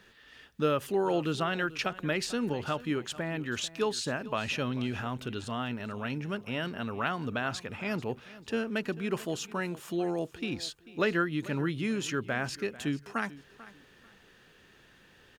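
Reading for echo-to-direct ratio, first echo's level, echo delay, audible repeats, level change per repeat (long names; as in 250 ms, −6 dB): −17.5 dB, −18.0 dB, 442 ms, 2, −12.0 dB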